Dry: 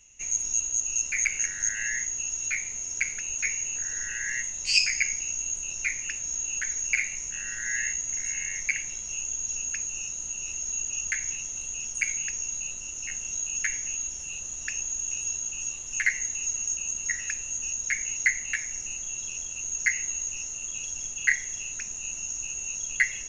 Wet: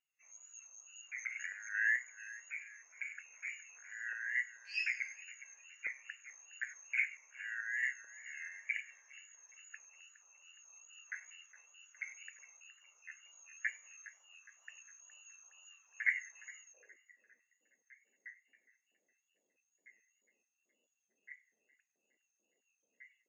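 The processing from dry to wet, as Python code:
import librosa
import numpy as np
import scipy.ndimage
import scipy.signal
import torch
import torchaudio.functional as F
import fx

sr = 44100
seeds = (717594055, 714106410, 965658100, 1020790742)

y = fx.filter_sweep_bandpass(x, sr, from_hz=1200.0, to_hz=220.0, start_s=16.54, end_s=17.07, q=2.2)
y = fx.echo_split(y, sr, split_hz=2400.0, low_ms=414, high_ms=98, feedback_pct=52, wet_db=-12.0)
y = fx.transient(y, sr, attack_db=-5, sustain_db=0)
y = fx.filter_lfo_highpass(y, sr, shape='square', hz=2.3, low_hz=510.0, high_hz=1600.0, q=1.9)
y = fx.wow_flutter(y, sr, seeds[0], rate_hz=2.1, depth_cents=59.0)
y = fx.spectral_expand(y, sr, expansion=1.5)
y = F.gain(torch.from_numpy(y), 2.0).numpy()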